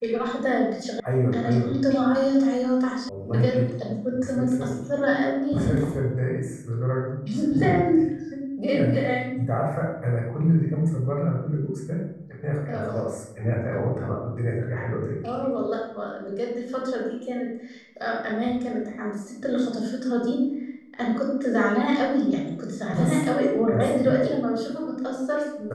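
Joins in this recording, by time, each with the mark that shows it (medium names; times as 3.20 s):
1.00 s: sound stops dead
3.09 s: sound stops dead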